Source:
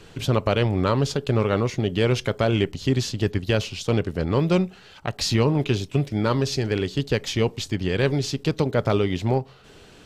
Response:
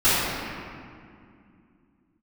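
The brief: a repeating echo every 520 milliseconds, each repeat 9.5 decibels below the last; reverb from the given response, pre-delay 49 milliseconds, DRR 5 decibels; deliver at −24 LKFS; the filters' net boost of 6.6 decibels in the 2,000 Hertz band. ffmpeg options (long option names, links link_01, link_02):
-filter_complex "[0:a]equalizer=frequency=2000:width_type=o:gain=8.5,aecho=1:1:520|1040|1560|2080:0.335|0.111|0.0365|0.012,asplit=2[link_01][link_02];[1:a]atrim=start_sample=2205,adelay=49[link_03];[link_02][link_03]afir=irnorm=-1:irlink=0,volume=-26dB[link_04];[link_01][link_04]amix=inputs=2:normalize=0,volume=-3.5dB"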